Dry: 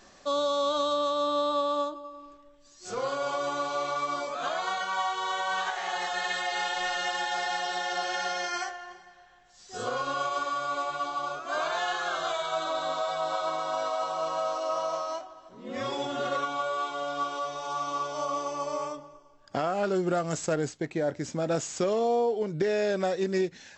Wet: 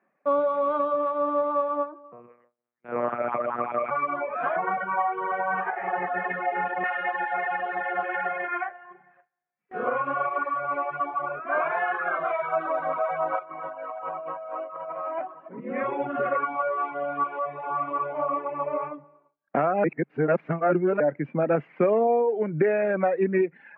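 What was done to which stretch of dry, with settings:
2.12–3.91 monotone LPC vocoder at 8 kHz 120 Hz
4.56–6.84 tilt -3.5 dB/oct
13.39–15.6 negative-ratio compressor -37 dBFS
19.84–21 reverse
whole clip: Chebyshev band-pass 140–2400 Hz, order 5; gate with hold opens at -45 dBFS; reverb removal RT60 1.1 s; gain +6.5 dB

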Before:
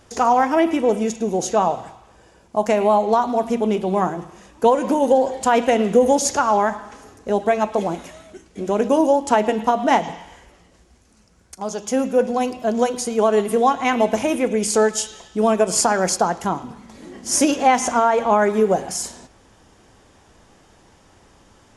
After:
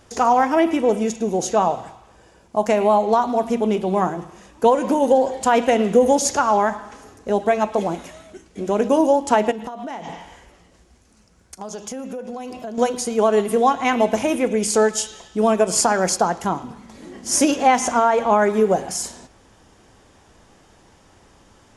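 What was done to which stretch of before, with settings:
9.51–12.78 compressor 12:1, threshold -27 dBFS

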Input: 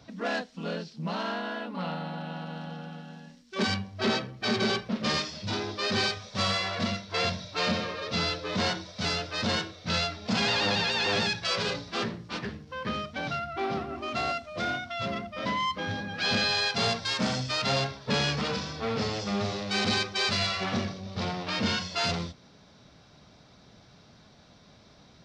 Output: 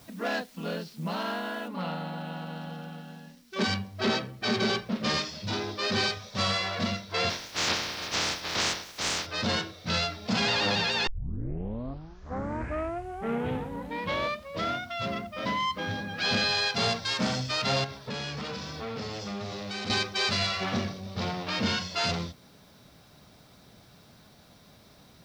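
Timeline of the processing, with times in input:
1.68 noise floor step -58 dB -67 dB
7.29–9.25 spectral limiter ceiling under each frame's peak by 26 dB
11.07 tape start 3.77 s
17.84–19.9 compressor 3:1, threshold -34 dBFS

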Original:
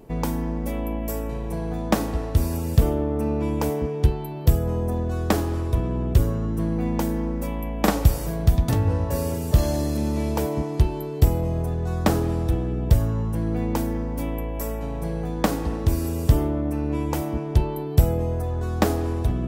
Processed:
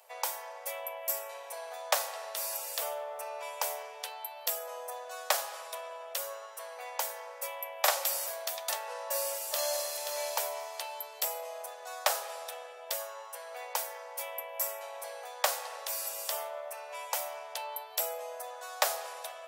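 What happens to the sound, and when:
9.19–9.88 echo throw 0.53 s, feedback 15%, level -7.5 dB
whole clip: steep high-pass 530 Hz 72 dB/oct; high shelf 2100 Hz +10 dB; gain -6 dB

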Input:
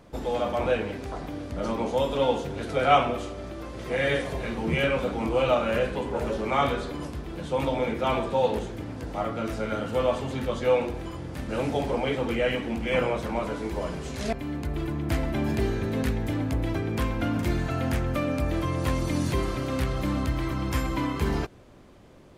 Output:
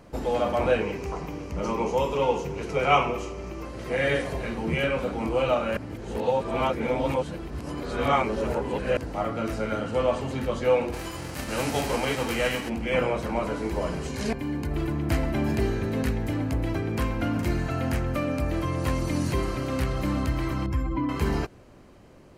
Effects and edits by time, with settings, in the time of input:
0.81–3.65 ripple EQ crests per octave 0.77, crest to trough 8 dB
5.77–8.97 reverse
9.81–10.21 LPF 10000 Hz 24 dB/oct
10.92–12.68 spectral whitening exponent 0.6
14.07–14.71 notch comb 660 Hz
20.66–21.09 spectral contrast raised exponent 1.6
whole clip: notch 3500 Hz, Q 9.2; vocal rider within 4 dB 2 s

